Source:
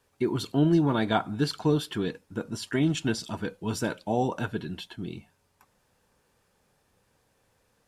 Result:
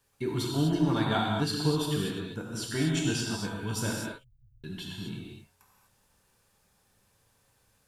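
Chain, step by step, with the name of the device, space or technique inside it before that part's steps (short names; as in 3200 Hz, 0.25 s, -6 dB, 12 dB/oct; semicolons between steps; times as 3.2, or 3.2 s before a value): smiley-face EQ (low shelf 120 Hz +3.5 dB; bell 400 Hz -4.5 dB 2.4 oct; high shelf 6000 Hz +6.5 dB); 3.98–4.64 inverse Chebyshev band-stop 240–9200 Hz, stop band 70 dB; non-linear reverb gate 0.27 s flat, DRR -2 dB; gain -4 dB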